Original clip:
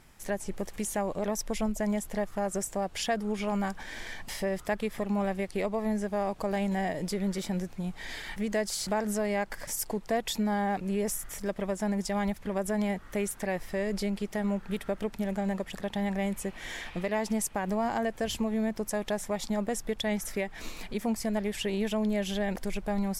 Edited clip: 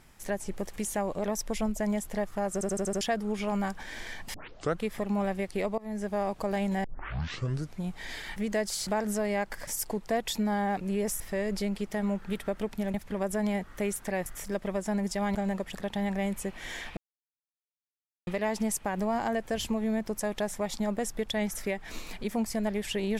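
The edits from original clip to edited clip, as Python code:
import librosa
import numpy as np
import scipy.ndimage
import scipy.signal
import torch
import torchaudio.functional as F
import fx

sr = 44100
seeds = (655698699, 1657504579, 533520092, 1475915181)

y = fx.edit(x, sr, fx.stutter_over(start_s=2.53, slice_s=0.08, count=6),
    fx.tape_start(start_s=4.34, length_s=0.48),
    fx.fade_in_from(start_s=5.78, length_s=0.3, floor_db=-23.0),
    fx.tape_start(start_s=6.84, length_s=0.95),
    fx.swap(start_s=11.2, length_s=1.09, other_s=13.61, other_length_s=1.74),
    fx.insert_silence(at_s=16.97, length_s=1.3), tone=tone)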